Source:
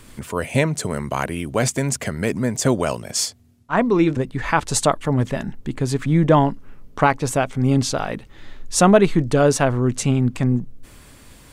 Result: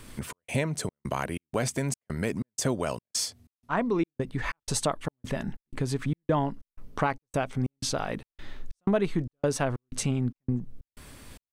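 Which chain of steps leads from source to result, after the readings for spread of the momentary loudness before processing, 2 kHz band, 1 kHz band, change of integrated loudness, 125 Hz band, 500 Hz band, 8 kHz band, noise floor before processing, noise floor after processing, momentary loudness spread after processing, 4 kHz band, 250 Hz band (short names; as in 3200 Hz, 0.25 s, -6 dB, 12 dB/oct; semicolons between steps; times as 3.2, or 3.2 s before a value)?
10 LU, -10.0 dB, -11.0 dB, -10.5 dB, -10.5 dB, -10.5 dB, -9.0 dB, -47 dBFS, under -85 dBFS, 12 LU, -7.5 dB, -10.5 dB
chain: step gate "xxxx..xxxxx.." 186 bpm -60 dB; compressor 2:1, threshold -27 dBFS, peak gain reduction 10.5 dB; notch 7100 Hz, Q 12; gain -2 dB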